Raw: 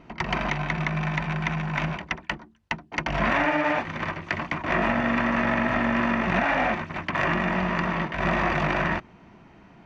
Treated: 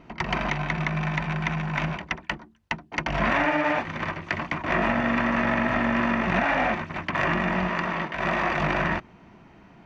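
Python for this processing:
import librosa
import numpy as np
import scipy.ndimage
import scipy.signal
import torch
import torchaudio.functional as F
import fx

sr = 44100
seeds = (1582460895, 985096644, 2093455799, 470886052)

y = fx.low_shelf(x, sr, hz=180.0, db=-9.0, at=(7.68, 8.59))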